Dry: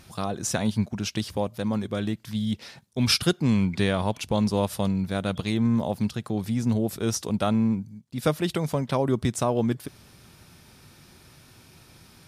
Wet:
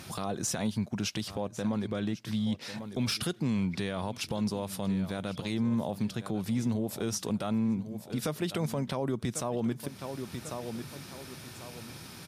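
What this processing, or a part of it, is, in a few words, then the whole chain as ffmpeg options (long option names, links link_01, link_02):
podcast mastering chain: -filter_complex "[0:a]asettb=1/sr,asplit=3[link_01][link_02][link_03];[link_01]atrim=end=1.284[link_04];[link_02]atrim=start=1.28:end=2.61,asetpts=PTS-STARTPTS,afade=type=in:duration=0.004:curve=qsin,afade=type=out:start_time=1.326:duration=0.004:curve=qsin,highshelf=frequency=8400:gain=-10.5[link_05];[link_03]atrim=start=2.606[link_06];[link_04][link_05]acrossfade=duration=0.004:curve1=hsin:curve2=qsin[link_07];[link_07][link_06]acrossfade=duration=0.004:curve1=qsin:curve2=hsin,highpass=100,aecho=1:1:1095|2190:0.119|0.0309,deesser=0.45,acompressor=threshold=-41dB:ratio=2,alimiter=level_in=4dB:limit=-24dB:level=0:latency=1:release=36,volume=-4dB,volume=7dB" -ar 44100 -c:a libmp3lame -b:a 96k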